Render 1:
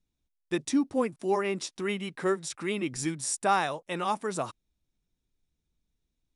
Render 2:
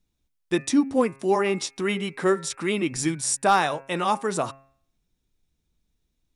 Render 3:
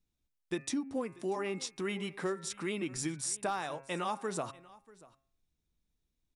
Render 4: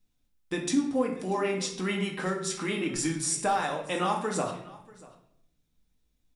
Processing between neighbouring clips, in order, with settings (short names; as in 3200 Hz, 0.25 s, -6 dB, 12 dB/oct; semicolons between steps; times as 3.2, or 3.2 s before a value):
overloaded stage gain 15.5 dB; de-hum 135.5 Hz, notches 20; gain +6 dB
compressor 6:1, threshold -23 dBFS, peak gain reduction 9 dB; echo 0.638 s -21.5 dB; gain -8 dB
reverb RT60 0.65 s, pre-delay 4 ms, DRR 0.5 dB; gain +4.5 dB